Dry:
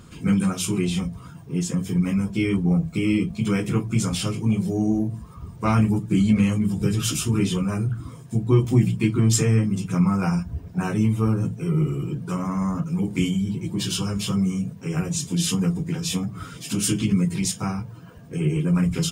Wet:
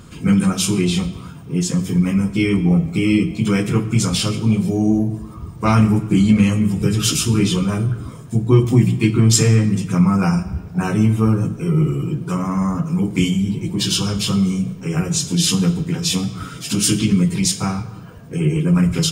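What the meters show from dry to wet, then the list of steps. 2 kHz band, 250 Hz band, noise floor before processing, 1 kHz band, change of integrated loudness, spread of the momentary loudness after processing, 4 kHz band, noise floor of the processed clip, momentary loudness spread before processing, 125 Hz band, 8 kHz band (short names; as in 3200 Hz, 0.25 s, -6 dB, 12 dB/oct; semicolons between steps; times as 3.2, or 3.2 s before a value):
+6.0 dB, +5.5 dB, -42 dBFS, +5.5 dB, +5.5 dB, 8 LU, +8.5 dB, -35 dBFS, 8 LU, +5.0 dB, +7.0 dB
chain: dynamic EQ 4500 Hz, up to +5 dB, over -41 dBFS, Q 1.3; digital reverb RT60 1.3 s, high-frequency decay 0.8×, pre-delay 10 ms, DRR 12.5 dB; gain +5 dB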